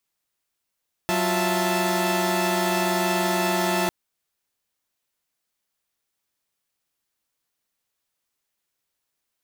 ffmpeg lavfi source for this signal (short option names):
-f lavfi -i "aevalsrc='0.0631*((2*mod(185*t,1)-1)+(2*mod(349.23*t,1)-1)+(2*mod(659.26*t,1)-1)+(2*mod(880*t,1)-1))':d=2.8:s=44100"